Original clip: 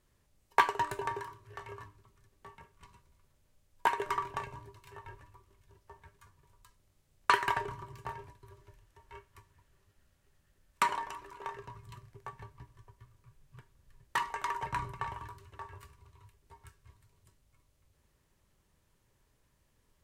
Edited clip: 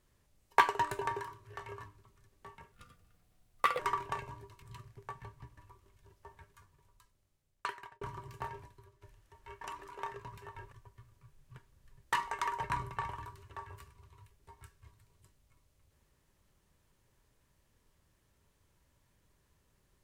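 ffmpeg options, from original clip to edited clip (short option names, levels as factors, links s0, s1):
-filter_complex "[0:a]asplit=10[s0][s1][s2][s3][s4][s5][s6][s7][s8][s9];[s0]atrim=end=2.724[s10];[s1]atrim=start=2.72:end=4.04,asetpts=PTS-STARTPTS,asetrate=54243,aresample=44100[s11];[s2]atrim=start=4.036:end=4.872[s12];[s3]atrim=start=11.798:end=12.752[s13];[s4]atrim=start=5.218:end=7.66,asetpts=PTS-STARTPTS,afade=t=out:st=0.822:d=1.62[s14];[s5]atrim=start=7.66:end=8.66,asetpts=PTS-STARTPTS,afade=t=in:d=0.004:c=hsin,afade=t=out:st=0.72:d=0.28:c=qua:silence=0.334965[s15];[s6]atrim=start=8.66:end=9.262,asetpts=PTS-STARTPTS,afade=t=in:d=0.004:c=hsin:silence=0.334965[s16];[s7]atrim=start=11.038:end=11.802[s17];[s8]atrim=start=4.868:end=5.222[s18];[s9]atrim=start=12.748[s19];[s10][s11]acrossfade=d=0.004:c1=hsin:c2=hsin[s20];[s20][s12]acrossfade=d=0.004:c1=hsin:c2=hsin[s21];[s21][s13]acrossfade=d=0.004:c1=hsin:c2=hsin[s22];[s14][s15][s16]concat=n=3:v=0:a=1[s23];[s22][s23]acrossfade=d=0.004:c1=hsin:c2=hsin[s24];[s24][s17]acrossfade=d=0.004:c1=hsin:c2=hsin[s25];[s25][s18]acrossfade=d=0.004:c1=hsin:c2=hsin[s26];[s26][s19]acrossfade=d=0.004:c1=hsin:c2=hsin"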